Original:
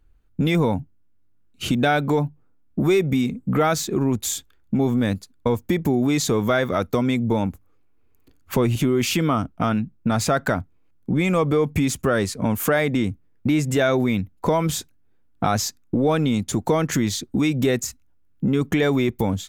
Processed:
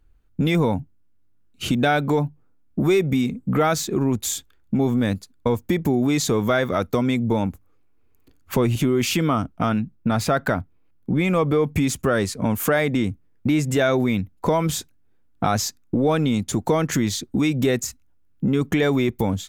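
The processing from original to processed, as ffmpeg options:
ffmpeg -i in.wav -filter_complex "[0:a]asettb=1/sr,asplit=3[link_01][link_02][link_03];[link_01]atrim=end=9.954[link_04];[link_02]atrim=start=9.95:end=11.71,asetpts=PTS-STARTPTS,afade=type=in:duration=0.004:curve=qsin,afade=type=out:start_time=1.756:duration=0.004:curve=qsin,equalizer=frequency=7200:width_type=o:width=0.78:gain=-6[link_05];[link_03]atrim=start=11.706[link_06];[link_04][link_05]acrossfade=duration=0.004:curve1=hsin:curve2=qsin[link_07];[link_07][link_06]acrossfade=duration=0.004:curve1=qsin:curve2=hsin" out.wav

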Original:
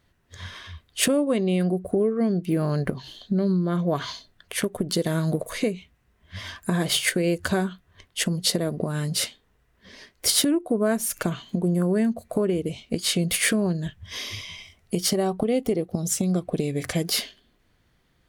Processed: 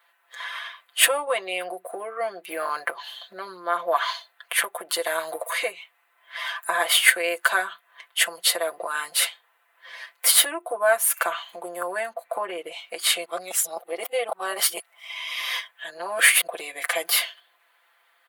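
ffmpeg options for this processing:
ffmpeg -i in.wav -filter_complex "[0:a]asettb=1/sr,asplit=3[link_01][link_02][link_03];[link_01]atrim=end=12.134[link_04];[link_02]atrim=start=12.13:end=12.72,asetpts=PTS-STARTPTS,afade=type=in:duration=0.004:curve=qsin,afade=type=out:start_time=0.586:duration=0.004:curve=qsin,bass=frequency=250:gain=4,treble=frequency=4000:gain=-8[link_05];[link_03]atrim=start=12.716[link_06];[link_04][link_05]acrossfade=duration=0.004:curve1=hsin:curve2=qsin[link_07];[link_07][link_06]acrossfade=duration=0.004:curve1=qsin:curve2=hsin,asplit=3[link_08][link_09][link_10];[link_08]atrim=end=13.252[link_11];[link_09]atrim=start=13.248:end=16.472,asetpts=PTS-STARTPTS,areverse[link_12];[link_10]atrim=start=16.468[link_13];[link_11][link_12]acrossfade=duration=0.004:curve1=hsin:curve2=hsin[link_14];[link_14][link_13]acrossfade=duration=0.004:curve1=hsin:curve2=hsin,highpass=frequency=760:width=0.5412,highpass=frequency=760:width=1.3066,equalizer=frequency=5700:width=1.1:gain=-15,aecho=1:1:5.9:0.87,volume=8.5dB" out.wav

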